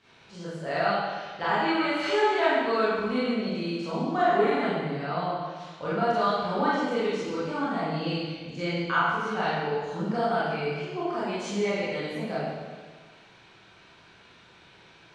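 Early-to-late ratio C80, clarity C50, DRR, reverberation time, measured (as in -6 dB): -0.5 dB, -3.5 dB, -10.5 dB, 1.5 s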